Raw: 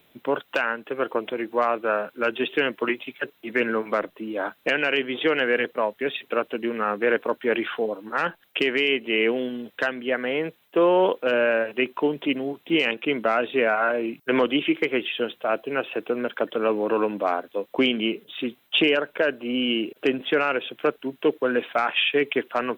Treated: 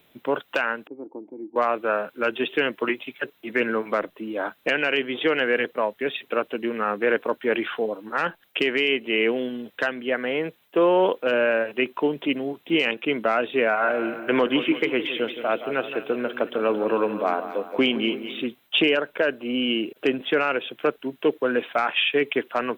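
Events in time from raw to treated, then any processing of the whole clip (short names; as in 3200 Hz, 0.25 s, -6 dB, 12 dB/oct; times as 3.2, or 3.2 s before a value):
0.87–1.56 vocal tract filter u
13.67–18.42 split-band echo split 1700 Hz, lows 0.169 s, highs 0.225 s, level -11 dB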